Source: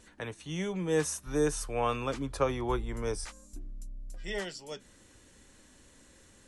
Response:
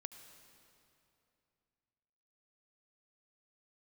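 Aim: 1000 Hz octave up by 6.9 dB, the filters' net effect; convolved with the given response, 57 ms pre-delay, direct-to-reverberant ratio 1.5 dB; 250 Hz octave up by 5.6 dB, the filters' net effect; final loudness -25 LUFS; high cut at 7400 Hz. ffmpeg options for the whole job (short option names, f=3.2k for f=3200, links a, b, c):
-filter_complex "[0:a]lowpass=7.4k,equalizer=f=250:t=o:g=7,equalizer=f=1k:t=o:g=8,asplit=2[a][b];[1:a]atrim=start_sample=2205,adelay=57[c];[b][c]afir=irnorm=-1:irlink=0,volume=3dB[d];[a][d]amix=inputs=2:normalize=0,volume=2dB"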